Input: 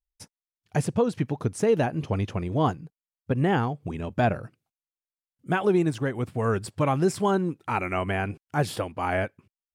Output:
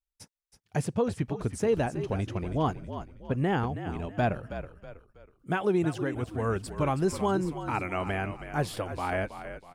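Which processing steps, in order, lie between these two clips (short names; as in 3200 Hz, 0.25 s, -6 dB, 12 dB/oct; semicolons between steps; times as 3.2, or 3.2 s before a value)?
frequency-shifting echo 0.322 s, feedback 39%, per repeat -50 Hz, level -10.5 dB; gain -4 dB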